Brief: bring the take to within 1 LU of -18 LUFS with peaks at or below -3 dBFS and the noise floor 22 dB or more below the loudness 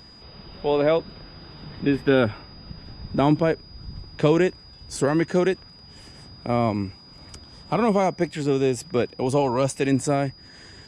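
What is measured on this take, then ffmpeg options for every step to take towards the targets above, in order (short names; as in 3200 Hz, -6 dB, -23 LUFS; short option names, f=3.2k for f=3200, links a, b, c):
steady tone 4900 Hz; tone level -47 dBFS; loudness -23.0 LUFS; peak -6.0 dBFS; loudness target -18.0 LUFS
-> -af "bandreject=f=4.9k:w=30"
-af "volume=5dB,alimiter=limit=-3dB:level=0:latency=1"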